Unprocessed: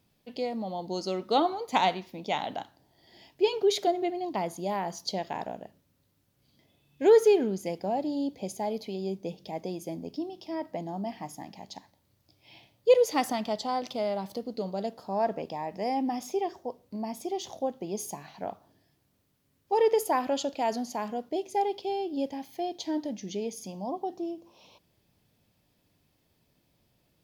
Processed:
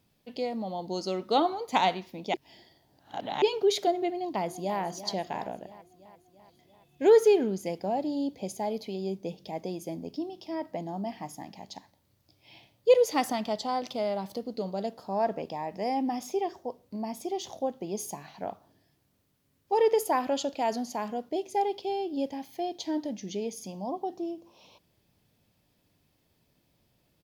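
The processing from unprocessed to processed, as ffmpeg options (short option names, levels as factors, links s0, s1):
-filter_complex "[0:a]asplit=2[s0][s1];[s1]afade=t=in:st=4.14:d=0.01,afade=t=out:st=4.79:d=0.01,aecho=0:1:340|680|1020|1360|1700|2040|2380|2720:0.223872|0.145517|0.094586|0.0614809|0.0399626|0.0259757|0.0168842|0.0109747[s2];[s0][s2]amix=inputs=2:normalize=0,asplit=3[s3][s4][s5];[s3]atrim=end=2.342[s6];[s4]atrim=start=2.338:end=3.422,asetpts=PTS-STARTPTS,areverse[s7];[s5]atrim=start=3.418[s8];[s6][s7]acrossfade=d=0.004:c1=hsin:c2=hsin[s9];[s9][s8]acrossfade=d=0.004:c1=hsin:c2=hsin"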